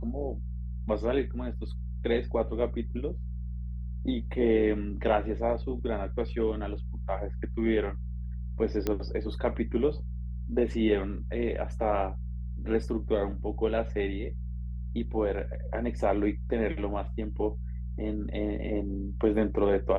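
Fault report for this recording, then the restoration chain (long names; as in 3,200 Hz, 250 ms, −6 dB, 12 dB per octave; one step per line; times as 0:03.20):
mains hum 60 Hz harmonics 3 −35 dBFS
0:08.87: click −15 dBFS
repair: click removal
hum removal 60 Hz, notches 3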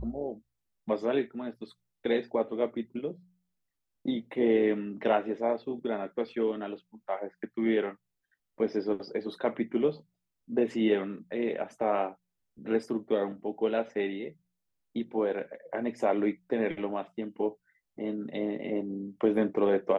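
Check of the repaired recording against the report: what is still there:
none of them is left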